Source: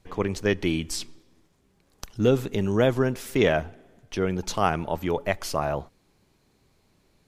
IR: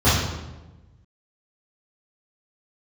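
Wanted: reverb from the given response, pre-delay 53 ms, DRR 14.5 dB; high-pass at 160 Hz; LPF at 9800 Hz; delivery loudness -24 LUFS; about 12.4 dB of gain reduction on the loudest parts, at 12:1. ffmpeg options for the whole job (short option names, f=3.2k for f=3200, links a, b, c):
-filter_complex "[0:a]highpass=160,lowpass=9.8k,acompressor=threshold=-28dB:ratio=12,asplit=2[a][b];[1:a]atrim=start_sample=2205,adelay=53[c];[b][c]afir=irnorm=-1:irlink=0,volume=-36dB[d];[a][d]amix=inputs=2:normalize=0,volume=10dB"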